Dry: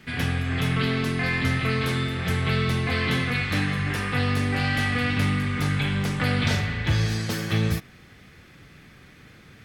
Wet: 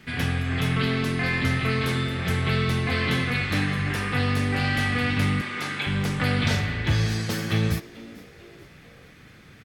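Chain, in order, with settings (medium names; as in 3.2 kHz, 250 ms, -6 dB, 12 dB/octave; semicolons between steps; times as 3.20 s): 5.41–5.87 s: frequency weighting A; on a send: frequency-shifting echo 441 ms, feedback 46%, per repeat +120 Hz, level -20.5 dB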